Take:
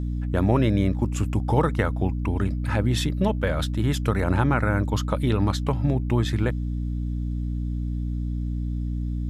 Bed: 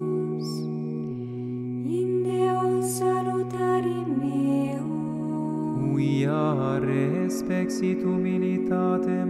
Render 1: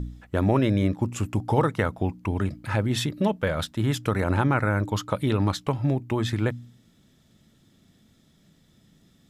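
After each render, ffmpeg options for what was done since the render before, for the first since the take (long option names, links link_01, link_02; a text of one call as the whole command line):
ffmpeg -i in.wav -af "bandreject=frequency=60:width_type=h:width=4,bandreject=frequency=120:width_type=h:width=4,bandreject=frequency=180:width_type=h:width=4,bandreject=frequency=240:width_type=h:width=4,bandreject=frequency=300:width_type=h:width=4" out.wav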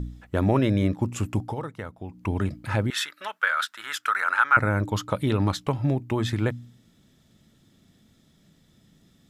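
ffmpeg -i in.wav -filter_complex "[0:a]asettb=1/sr,asplit=3[link_01][link_02][link_03];[link_01]atrim=end=2.904[link_04];[link_02]atrim=start=2.9:end=4.57,asetpts=PTS-STARTPTS,afade=type=in:duration=0.004:curve=qsin,afade=type=out:start_time=1.666:duration=0.004:curve=qsin,highpass=frequency=1400:width_type=q:width=4.4[link_05];[link_03]atrim=start=4.566[link_06];[link_04][link_05]acrossfade=duration=0.004:curve1=hsin:curve2=qsin[link_07];[link_07][link_06]acrossfade=duration=0.004:curve1=qsin:curve2=hsin,asplit=3[link_08][link_09][link_10];[link_08]atrim=end=1.55,asetpts=PTS-STARTPTS,afade=type=out:start_time=1.42:duration=0.13:silence=0.266073[link_11];[link_09]atrim=start=1.55:end=2.09,asetpts=PTS-STARTPTS,volume=-11.5dB[link_12];[link_10]atrim=start=2.09,asetpts=PTS-STARTPTS,afade=type=in:duration=0.13:silence=0.266073[link_13];[link_11][link_12][link_13]concat=n=3:v=0:a=1" out.wav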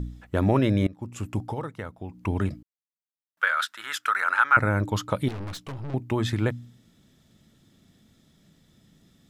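ffmpeg -i in.wav -filter_complex "[0:a]asettb=1/sr,asplit=3[link_01][link_02][link_03];[link_01]atrim=end=5.284[link_04];[link_02]atrim=start=5.28:end=5.94,asetpts=PTS-STARTPTS,afade=type=in:duration=0.004:curve=qsin,afade=type=out:start_time=0.656:duration=0.004:curve=qsin,aeval=exprs='(tanh(44.7*val(0)+0.5)-tanh(0.5))/44.7':channel_layout=same[link_05];[link_03]atrim=start=5.936[link_06];[link_04][link_05]acrossfade=duration=0.004:curve1=hsin:curve2=qsin[link_07];[link_07][link_06]acrossfade=duration=0.004:curve1=qsin:curve2=hsin,asplit=4[link_08][link_09][link_10][link_11];[link_08]atrim=end=0.87,asetpts=PTS-STARTPTS,afade=type=out:start_time=0.866:duration=0.004:curve=hsin:silence=0.0891251[link_12];[link_09]atrim=start=0.87:end=2.63,asetpts=PTS-STARTPTS,afade=type=in:duration=0.69:silence=0.0891251,afade=type=out:start_time=1.756:duration=0.004:curve=hsin[link_13];[link_10]atrim=start=2.63:end=3.37,asetpts=PTS-STARTPTS,volume=0[link_14];[link_11]atrim=start=3.37,asetpts=PTS-STARTPTS,afade=type=in:duration=0.004:curve=hsin[link_15];[link_12][link_13][link_14][link_15]concat=n=4:v=0:a=1" out.wav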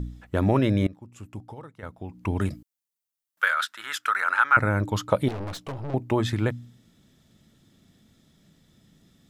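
ffmpeg -i in.wav -filter_complex "[0:a]asettb=1/sr,asplit=3[link_01][link_02][link_03];[link_01]atrim=end=2.404[link_04];[link_02]atrim=start=2.4:end=3.54,asetpts=PTS-STARTPTS,afade=type=in:duration=0.004:curve=qsin,afade=type=out:start_time=1.136:duration=0.004:curve=qsin,highshelf=frequency=5500:gain=10.5[link_05];[link_03]atrim=start=3.536[link_06];[link_04][link_05]acrossfade=duration=0.004:curve1=hsin:curve2=qsin[link_07];[link_07][link_06]acrossfade=duration=0.004:curve1=qsin:curve2=hsin,asettb=1/sr,asplit=3[link_08][link_09][link_10];[link_08]atrim=end=5.124[link_11];[link_09]atrim=start=5.12:end=6.21,asetpts=PTS-STARTPTS,afade=type=in:duration=0.004:curve=qsin,afade=type=out:start_time=1.086:duration=0.004:curve=qsin,equalizer=frequency=610:width_type=o:width=1.4:gain=7[link_12];[link_10]atrim=start=6.206[link_13];[link_11][link_12]acrossfade=duration=0.004:curve1=hsin:curve2=qsin[link_14];[link_14][link_13]acrossfade=duration=0.004:curve1=qsin:curve2=hsin,asplit=3[link_15][link_16][link_17];[link_15]atrim=end=0.992[link_18];[link_16]atrim=start=0.988:end=1.832,asetpts=PTS-STARTPTS,volume=-9.5dB[link_19];[link_17]atrim=start=1.828[link_20];[link_18][link_19]acrossfade=duration=0.004:curve1=hsin:curve2=hsin[link_21];[link_21][link_20]acrossfade=duration=0.004:curve1=hsin:curve2=hsin" out.wav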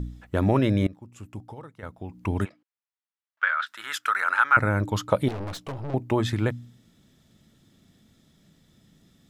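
ffmpeg -i in.wav -filter_complex "[0:a]asplit=3[link_01][link_02][link_03];[link_01]afade=type=out:start_time=2.44:duration=0.02[link_04];[link_02]highpass=790,lowpass=2400,afade=type=in:start_time=2.44:duration=0.02,afade=type=out:start_time=3.66:duration=0.02[link_05];[link_03]afade=type=in:start_time=3.66:duration=0.02[link_06];[link_04][link_05][link_06]amix=inputs=3:normalize=0" out.wav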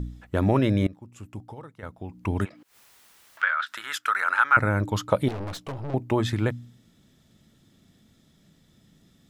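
ffmpeg -i in.wav -filter_complex "[0:a]asettb=1/sr,asplit=3[link_01][link_02][link_03];[link_01]atrim=end=2.404[link_04];[link_02]atrim=start=2.4:end=3.79,asetpts=PTS-STARTPTS,afade=type=in:duration=0.004:curve=qsin,afade=type=out:start_time=1.386:duration=0.004:curve=qsin,acompressor=mode=upward:threshold=-26dB:ratio=2.5:attack=3.2:release=140:knee=2.83:detection=peak[link_05];[link_03]atrim=start=3.786[link_06];[link_04][link_05]acrossfade=duration=0.004:curve1=hsin:curve2=qsin[link_07];[link_07][link_06]acrossfade=duration=0.004:curve1=qsin:curve2=hsin" out.wav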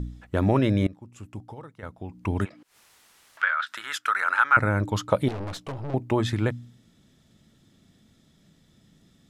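ffmpeg -i in.wav -af "lowpass=12000" out.wav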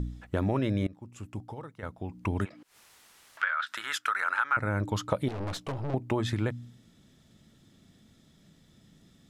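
ffmpeg -i in.wav -af "acompressor=threshold=-27dB:ratio=2.5" out.wav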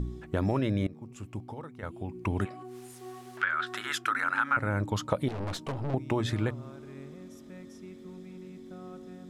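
ffmpeg -i in.wav -i bed.wav -filter_complex "[1:a]volume=-21dB[link_01];[0:a][link_01]amix=inputs=2:normalize=0" out.wav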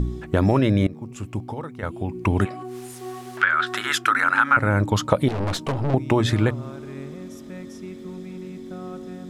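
ffmpeg -i in.wav -af "volume=9.5dB" out.wav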